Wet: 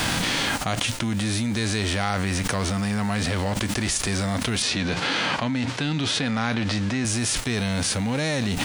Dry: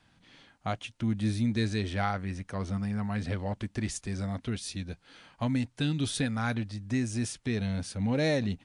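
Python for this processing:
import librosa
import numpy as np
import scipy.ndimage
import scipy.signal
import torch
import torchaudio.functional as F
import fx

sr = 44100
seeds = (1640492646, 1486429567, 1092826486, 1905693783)

y = fx.envelope_flatten(x, sr, power=0.6)
y = fx.rider(y, sr, range_db=10, speed_s=2.0)
y = fx.bandpass_edges(y, sr, low_hz=120.0, high_hz=4500.0, at=(4.62, 7.05))
y = fx.env_flatten(y, sr, amount_pct=100)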